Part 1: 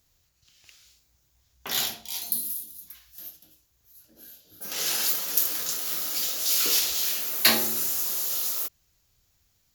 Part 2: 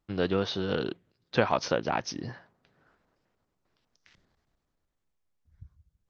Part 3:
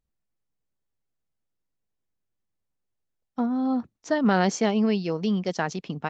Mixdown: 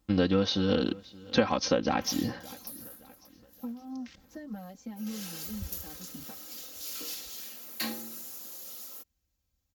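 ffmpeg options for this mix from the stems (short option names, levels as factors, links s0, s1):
-filter_complex "[0:a]adelay=350,volume=0.133[s0];[1:a]highshelf=f=3300:g=12,acompressor=threshold=0.0224:ratio=2,volume=1,asplit=3[s1][s2][s3];[s2]volume=0.0841[s4];[2:a]acompressor=threshold=0.0316:ratio=6,asplit=2[s5][s6];[s6]adelay=5.5,afreqshift=-1.5[s7];[s5][s7]amix=inputs=2:normalize=1,adelay=250,volume=0.178[s8];[s3]apad=whole_len=279940[s9];[s8][s9]sidechaincompress=threshold=0.00355:ratio=8:attack=9.3:release=614[s10];[s4]aecho=0:1:571|1142|1713|2284|2855|3426:1|0.43|0.185|0.0795|0.0342|0.0147[s11];[s0][s1][s10][s11]amix=inputs=4:normalize=0,highpass=43,lowshelf=f=420:g=11,aecho=1:1:3.8:0.74"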